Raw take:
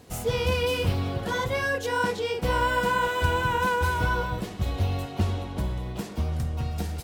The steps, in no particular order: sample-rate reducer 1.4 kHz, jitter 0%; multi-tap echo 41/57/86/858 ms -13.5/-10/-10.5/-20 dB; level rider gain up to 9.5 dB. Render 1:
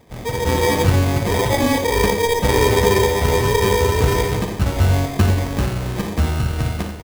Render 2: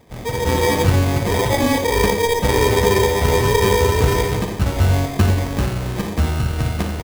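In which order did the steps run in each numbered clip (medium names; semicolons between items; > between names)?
level rider > sample-rate reducer > multi-tap echo; sample-rate reducer > multi-tap echo > level rider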